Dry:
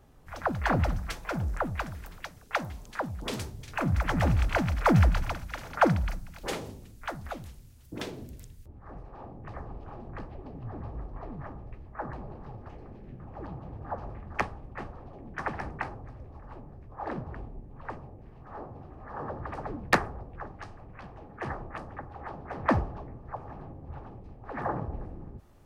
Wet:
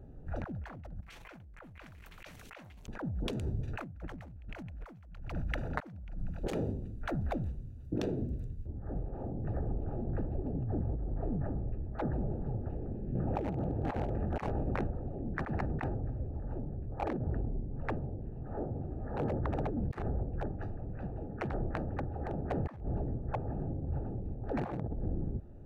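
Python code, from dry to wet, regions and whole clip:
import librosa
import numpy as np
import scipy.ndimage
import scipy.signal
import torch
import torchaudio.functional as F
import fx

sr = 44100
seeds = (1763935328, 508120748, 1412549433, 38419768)

y = fx.chain(x, sr, fx.peak_eq(hz=2600.0, db=10.0, octaves=1.4),
    fx.env_flatten(amount_pct=100), at=(1.02, 2.87))
y = fx.chain(y, sr, fx.low_shelf(hz=230.0, db=-10.0),
    fx.env_flatten(amount_pct=50), at=(13.15, 14.77))
y = fx.wiener(y, sr, points=41)
y = fx.notch(y, sr, hz=5000.0, q=16.0)
y = fx.over_compress(y, sr, threshold_db=-40.0, ratio=-1.0)
y = F.gain(torch.from_numpy(y), 1.0).numpy()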